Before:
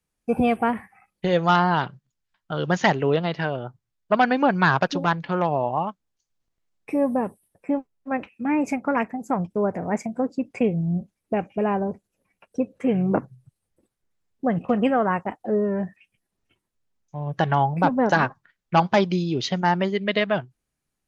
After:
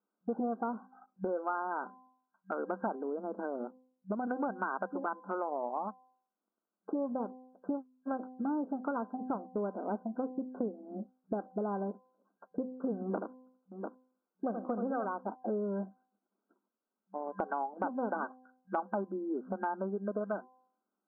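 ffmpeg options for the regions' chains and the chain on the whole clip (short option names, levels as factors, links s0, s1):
-filter_complex "[0:a]asettb=1/sr,asplit=3[s0][s1][s2];[s0]atrim=end=2.954[s3];[s1]atrim=start=2.95:end=4.27,asetpts=PTS-STARTPTS,afade=t=in:d=0.004:c=qsin,afade=t=out:st=1.316:d=0.004:c=qsin,lowpass=f=1100:p=1,aemphasis=mode=reproduction:type=riaa,acompressor=threshold=0.0794:ratio=4:attack=3.2:release=140:knee=1:detection=peak[s4];[s2]atrim=start=4.266[s5];[s3][s4]acrossfade=d=0.004:c1=hsin:c2=qsin[s6];[s6][s5]acrossfade=d=0.004:c1=qsin:c2=hsin,asettb=1/sr,asplit=3[s7][s8][s9];[s7]atrim=end=13.024[s10];[s8]atrim=start=13.02:end=15.05,asetpts=PTS-STARTPTS,afade=t=in:d=0.004:c=qsin,afade=t=out:st=2.026:d=0.004:c=qsin,highpass=200,aecho=1:1:78|696:0.473|0.15,atrim=end_sample=89523[s11];[s9]atrim=start=15.046[s12];[s10][s11]acrossfade=d=0.004:c1=hsin:c2=qsin[s13];[s13][s12]acrossfade=d=0.004:c1=qsin:c2=hsin,afftfilt=real='re*between(b*sr/4096,190,1600)':imag='im*between(b*sr/4096,190,1600)':win_size=4096:overlap=0.75,bandreject=f=255.8:t=h:w=4,bandreject=f=511.6:t=h:w=4,bandreject=f=767.4:t=h:w=4,bandreject=f=1023.2:t=h:w=4,acompressor=threshold=0.02:ratio=4"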